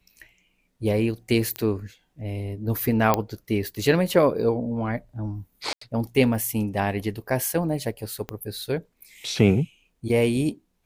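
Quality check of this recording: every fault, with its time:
1.56 s: pop -13 dBFS
3.14 s: pop -6 dBFS
5.73–5.81 s: dropout 84 ms
8.29 s: pop -17 dBFS

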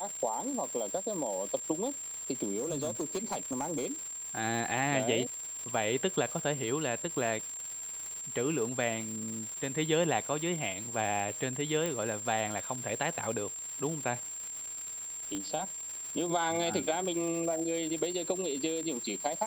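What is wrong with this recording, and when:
crackle 430 per s -38 dBFS
whine 7.4 kHz -38 dBFS
2.58–3.92 s: clipped -28.5 dBFS
11.86 s: pop -19 dBFS
15.35 s: pop -23 dBFS

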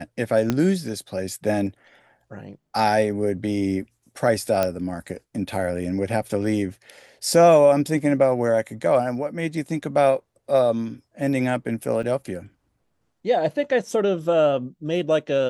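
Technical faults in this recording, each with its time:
0.50 s: pop -8 dBFS
4.63 s: pop -8 dBFS
12.03 s: dropout 4.4 ms

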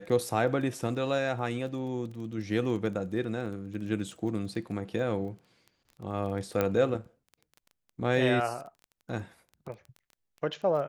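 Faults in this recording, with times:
crackle 13 per s -39 dBFS
3.46 s: dropout 2.4 ms
6.61 s: pop -14 dBFS

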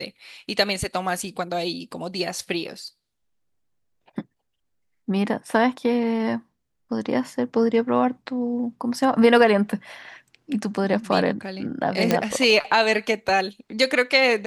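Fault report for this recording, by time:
12.11 s: pop -5 dBFS

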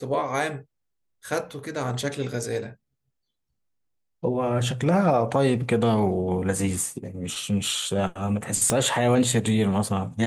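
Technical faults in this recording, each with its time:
8.70 s: pop -7 dBFS

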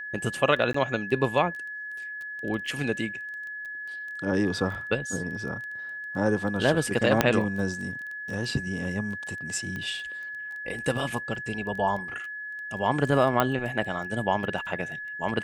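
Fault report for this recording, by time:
crackle 11 per s -34 dBFS
whine 1.7 kHz -34 dBFS
0.73–0.74 s: dropout 14 ms
7.21 s: pop -4 dBFS
9.76 s: pop -22 dBFS
13.40 s: pop -9 dBFS

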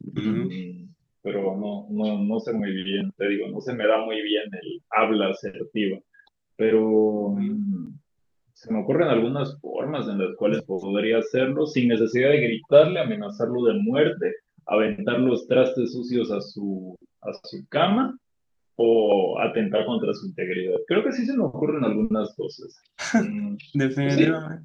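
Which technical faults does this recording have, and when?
7.86–7.87 s: dropout 7.3 ms

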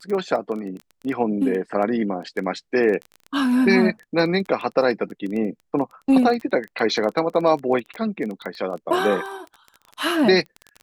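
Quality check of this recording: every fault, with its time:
crackle 15 per s -27 dBFS

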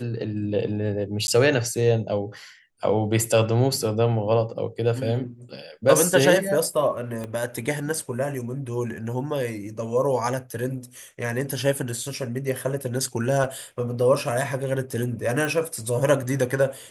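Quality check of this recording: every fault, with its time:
1.27–1.28 s: dropout 11 ms
7.24 s: pop -19 dBFS
13.44 s: dropout 3.4 ms
15.45 s: pop

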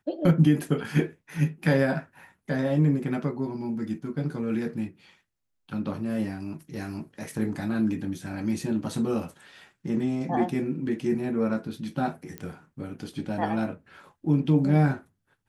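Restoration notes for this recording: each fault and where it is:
12.38 s: pop -20 dBFS

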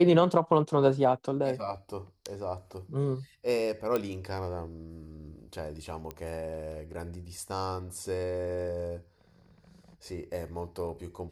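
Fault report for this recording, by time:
3.96 s: pop -16 dBFS
6.11 s: pop -23 dBFS

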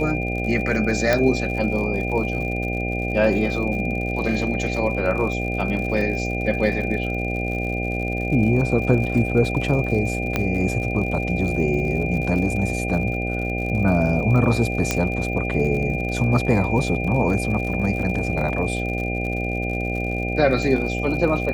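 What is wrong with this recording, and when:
buzz 60 Hz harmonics 13 -26 dBFS
crackle 78 per s -30 dBFS
whine 2.4 kHz -28 dBFS
1.13 s: pop -6 dBFS
10.36 s: pop -7 dBFS
14.91 s: pop -5 dBFS

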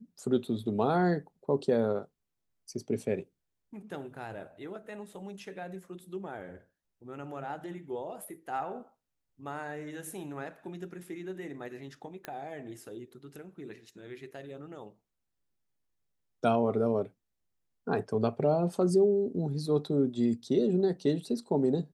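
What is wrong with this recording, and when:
12.25 s: pop -22 dBFS

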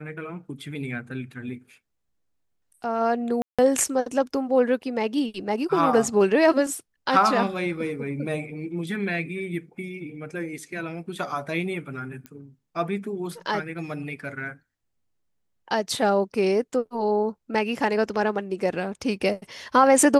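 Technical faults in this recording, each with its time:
3.42–3.59 s: dropout 166 ms
12.26 s: pop -23 dBFS

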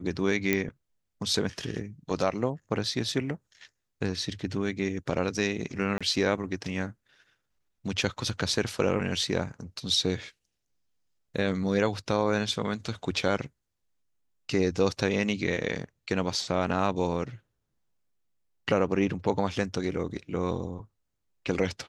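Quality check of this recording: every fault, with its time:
0.53 s: pop -10 dBFS
5.98–6.01 s: dropout 26 ms

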